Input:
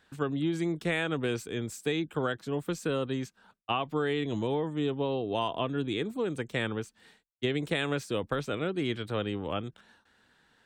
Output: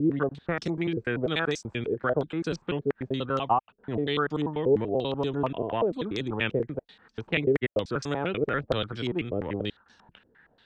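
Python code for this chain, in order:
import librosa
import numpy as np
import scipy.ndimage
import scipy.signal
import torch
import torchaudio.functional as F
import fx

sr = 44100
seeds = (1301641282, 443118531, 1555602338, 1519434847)

y = fx.block_reorder(x, sr, ms=97.0, group=5)
y = fx.low_shelf(y, sr, hz=140.0, db=4.5)
y = fx.filter_held_lowpass(y, sr, hz=8.6, low_hz=440.0, high_hz=5500.0)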